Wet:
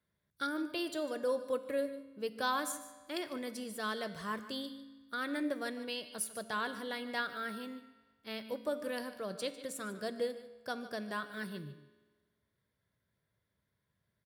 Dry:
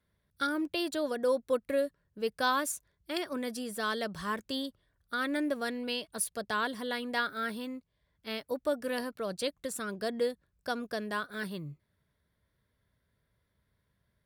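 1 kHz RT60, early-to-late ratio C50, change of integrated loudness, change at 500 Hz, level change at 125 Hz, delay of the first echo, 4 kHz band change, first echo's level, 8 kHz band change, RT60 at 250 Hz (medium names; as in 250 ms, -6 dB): 1.4 s, 11.0 dB, -4.5 dB, -4.5 dB, -4.5 dB, 149 ms, -4.5 dB, -15.0 dB, -4.5 dB, 1.4 s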